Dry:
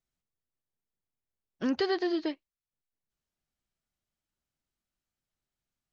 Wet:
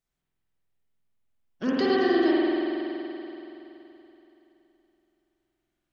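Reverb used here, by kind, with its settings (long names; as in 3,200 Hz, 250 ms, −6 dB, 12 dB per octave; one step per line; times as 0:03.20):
spring reverb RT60 3.3 s, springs 47 ms, chirp 65 ms, DRR −6 dB
level +1 dB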